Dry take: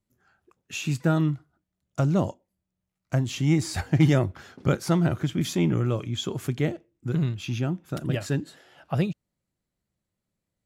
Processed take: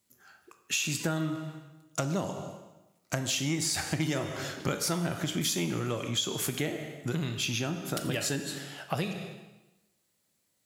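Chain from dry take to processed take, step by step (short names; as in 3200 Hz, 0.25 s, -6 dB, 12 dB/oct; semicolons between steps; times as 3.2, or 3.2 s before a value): reverb RT60 0.95 s, pre-delay 7 ms, DRR 7 dB; in parallel at -8.5 dB: soft clip -24.5 dBFS, distortion -7 dB; on the sum: HPF 270 Hz 6 dB/oct; high shelf 2900 Hz +11 dB; compressor 4:1, threshold -31 dBFS, peak gain reduction 13 dB; gain +2.5 dB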